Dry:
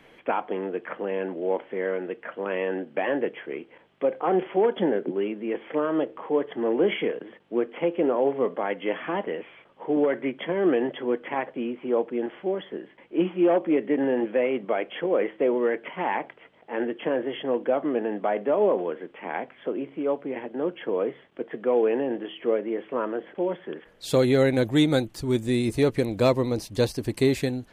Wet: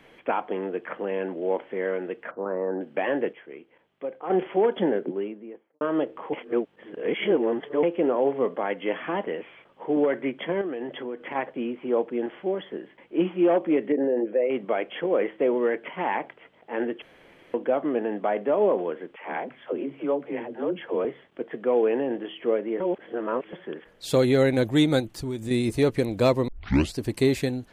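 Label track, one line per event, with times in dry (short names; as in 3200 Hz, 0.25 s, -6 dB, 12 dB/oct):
2.310000	2.810000	steep low-pass 1400 Hz
3.330000	4.300000	gain -8.5 dB
4.870000	5.810000	studio fade out
6.330000	7.830000	reverse
10.610000	11.350000	compressor 4:1, threshold -30 dBFS
13.920000	14.500000	formant sharpening exponent 1.5
17.020000	17.540000	room tone
19.160000	21.050000	dispersion lows, late by 83 ms, half as late at 360 Hz
22.800000	23.530000	reverse
25.000000	25.510000	compressor, threshold -27 dBFS
26.480000	26.480000	tape start 0.50 s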